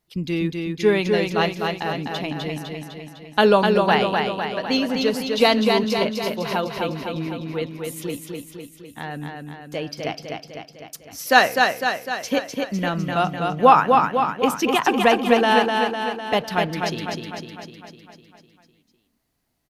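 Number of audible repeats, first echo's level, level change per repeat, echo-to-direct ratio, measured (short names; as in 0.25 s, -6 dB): 7, -4.0 dB, -4.5 dB, -2.0 dB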